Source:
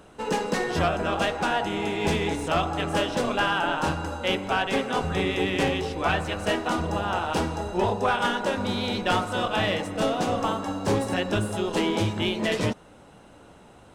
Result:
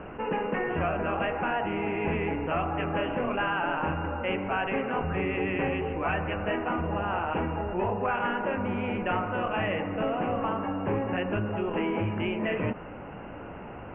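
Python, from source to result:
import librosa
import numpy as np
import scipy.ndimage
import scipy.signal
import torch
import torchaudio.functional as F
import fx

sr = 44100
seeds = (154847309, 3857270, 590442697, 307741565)

y = scipy.signal.sosfilt(scipy.signal.butter(16, 2800.0, 'lowpass', fs=sr, output='sos'), x)
y = fx.env_flatten(y, sr, amount_pct=50)
y = F.gain(torch.from_numpy(y), -5.5).numpy()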